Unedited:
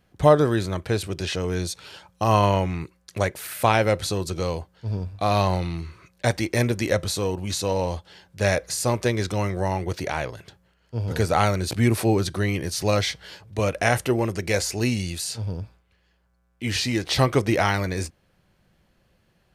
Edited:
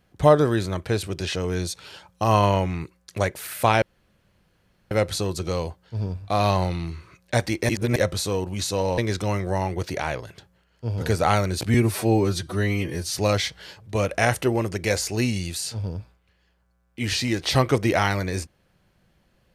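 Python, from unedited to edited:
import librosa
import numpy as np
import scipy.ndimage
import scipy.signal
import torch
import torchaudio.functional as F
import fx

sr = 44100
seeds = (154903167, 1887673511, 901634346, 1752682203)

y = fx.edit(x, sr, fx.insert_room_tone(at_s=3.82, length_s=1.09),
    fx.reverse_span(start_s=6.6, length_s=0.27),
    fx.cut(start_s=7.89, length_s=1.19),
    fx.stretch_span(start_s=11.84, length_s=0.93, factor=1.5), tone=tone)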